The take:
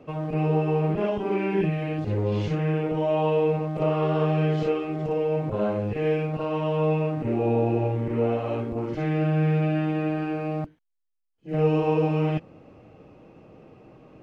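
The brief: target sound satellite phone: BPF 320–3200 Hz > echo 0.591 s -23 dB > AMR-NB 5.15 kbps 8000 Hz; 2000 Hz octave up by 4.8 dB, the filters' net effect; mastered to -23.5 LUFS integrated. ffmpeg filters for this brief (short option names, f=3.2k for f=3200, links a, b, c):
-af "highpass=320,lowpass=3.2k,equalizer=f=2k:t=o:g=7.5,aecho=1:1:591:0.0708,volume=5dB" -ar 8000 -c:a libopencore_amrnb -b:a 5150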